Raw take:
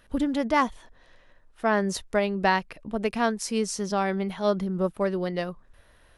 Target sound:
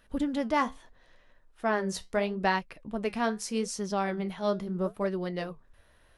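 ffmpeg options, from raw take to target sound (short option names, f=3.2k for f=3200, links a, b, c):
-af "flanger=delay=4.5:depth=9.2:regen=-67:speed=0.77:shape=sinusoidal"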